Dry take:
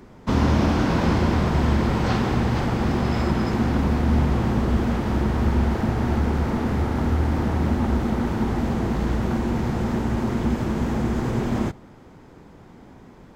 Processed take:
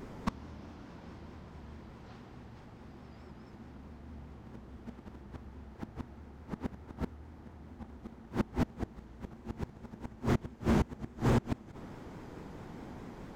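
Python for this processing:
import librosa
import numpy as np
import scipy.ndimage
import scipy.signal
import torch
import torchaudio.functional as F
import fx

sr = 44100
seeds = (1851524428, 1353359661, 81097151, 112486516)

y = fx.gate_flip(x, sr, shuts_db=-14.0, range_db=-29)
y = fx.vibrato(y, sr, rate_hz=4.7, depth_cents=98.0)
y = np.clip(y, -10.0 ** (-21.5 / 20.0), 10.0 ** (-21.5 / 20.0))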